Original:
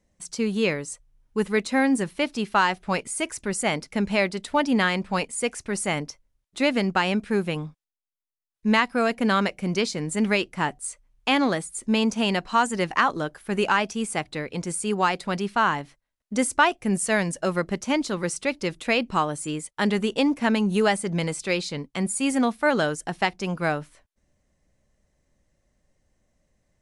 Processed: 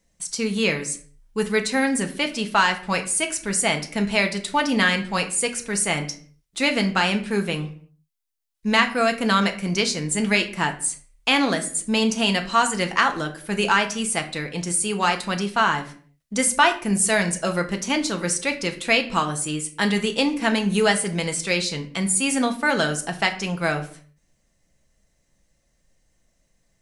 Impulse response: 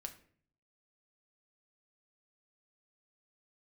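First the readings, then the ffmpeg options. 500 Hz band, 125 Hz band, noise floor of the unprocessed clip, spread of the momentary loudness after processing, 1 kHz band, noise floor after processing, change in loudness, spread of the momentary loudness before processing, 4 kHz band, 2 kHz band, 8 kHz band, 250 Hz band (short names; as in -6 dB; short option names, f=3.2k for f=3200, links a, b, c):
+0.5 dB, +2.0 dB, -82 dBFS, 7 LU, +1.5 dB, -68 dBFS, +2.5 dB, 8 LU, +6.0 dB, +4.0 dB, +8.0 dB, +0.5 dB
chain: -filter_complex "[0:a]highshelf=f=2.1k:g=9[a];[1:a]atrim=start_sample=2205,afade=t=out:st=0.41:d=0.01,atrim=end_sample=18522[b];[a][b]afir=irnorm=-1:irlink=0,volume=3.5dB"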